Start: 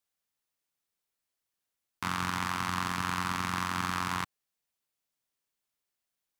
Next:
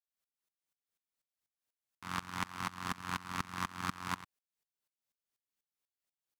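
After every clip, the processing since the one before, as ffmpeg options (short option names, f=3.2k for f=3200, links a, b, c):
-af "aeval=exprs='val(0)*pow(10,-24*if(lt(mod(-4.1*n/s,1),2*abs(-4.1)/1000),1-mod(-4.1*n/s,1)/(2*abs(-4.1)/1000),(mod(-4.1*n/s,1)-2*abs(-4.1)/1000)/(1-2*abs(-4.1)/1000))/20)':c=same"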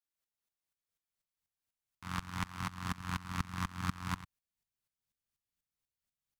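-af "asubboost=boost=5:cutoff=180,volume=-1.5dB"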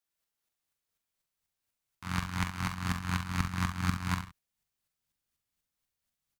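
-af "aecho=1:1:44|68:0.398|0.299,volume=4.5dB"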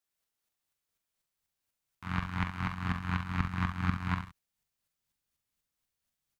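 -filter_complex "[0:a]acrossover=split=3400[a][b];[b]acompressor=threshold=-59dB:ratio=4:attack=1:release=60[c];[a][c]amix=inputs=2:normalize=0"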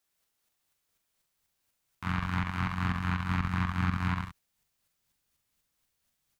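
-af "alimiter=limit=-24dB:level=0:latency=1:release=107,volume=7dB"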